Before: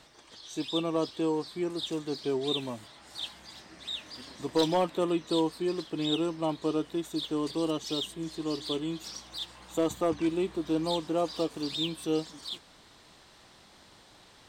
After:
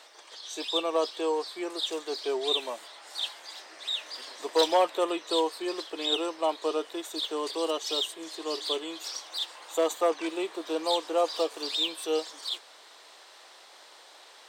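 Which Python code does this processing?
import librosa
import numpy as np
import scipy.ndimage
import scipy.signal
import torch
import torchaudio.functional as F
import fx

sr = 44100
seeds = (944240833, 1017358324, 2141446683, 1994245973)

y = scipy.signal.sosfilt(scipy.signal.butter(4, 440.0, 'highpass', fs=sr, output='sos'), x)
y = y * 10.0 ** (5.0 / 20.0)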